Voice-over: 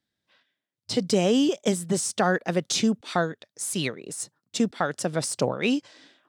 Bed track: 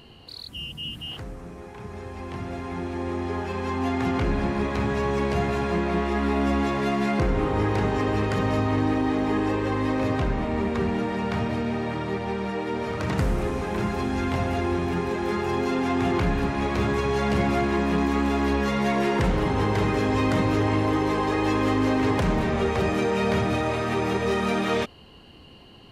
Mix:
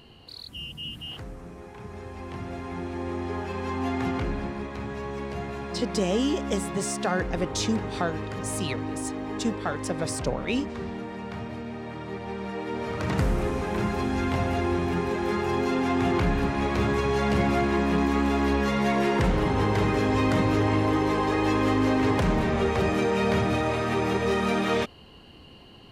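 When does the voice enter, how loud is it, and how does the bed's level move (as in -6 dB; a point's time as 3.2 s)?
4.85 s, -4.0 dB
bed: 4.04 s -2.5 dB
4.68 s -9 dB
11.76 s -9 dB
13.15 s -0.5 dB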